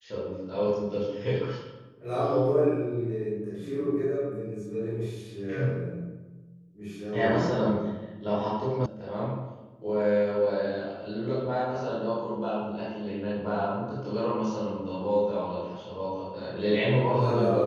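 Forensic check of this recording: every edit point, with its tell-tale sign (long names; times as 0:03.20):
0:08.86: cut off before it has died away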